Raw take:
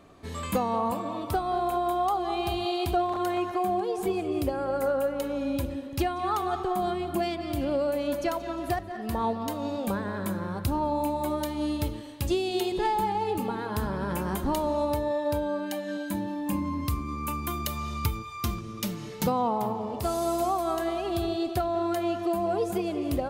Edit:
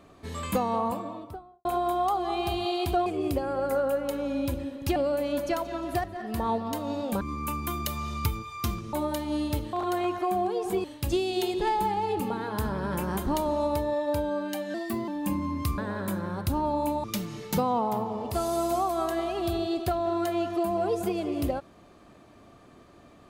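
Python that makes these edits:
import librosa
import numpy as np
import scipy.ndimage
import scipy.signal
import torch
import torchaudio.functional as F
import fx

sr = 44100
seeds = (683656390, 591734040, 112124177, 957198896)

y = fx.studio_fade_out(x, sr, start_s=0.73, length_s=0.92)
y = fx.edit(y, sr, fx.move(start_s=3.06, length_s=1.11, to_s=12.02),
    fx.cut(start_s=6.07, length_s=1.64),
    fx.swap(start_s=9.96, length_s=1.26, other_s=17.01, other_length_s=1.72),
    fx.speed_span(start_s=15.92, length_s=0.39, speed=1.15), tone=tone)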